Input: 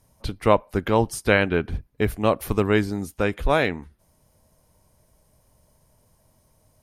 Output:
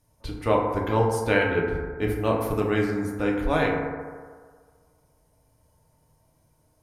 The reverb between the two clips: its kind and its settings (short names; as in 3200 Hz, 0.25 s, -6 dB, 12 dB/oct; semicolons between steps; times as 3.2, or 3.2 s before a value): FDN reverb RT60 1.7 s, low-frequency decay 0.8×, high-frequency decay 0.3×, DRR -2 dB; gain -7 dB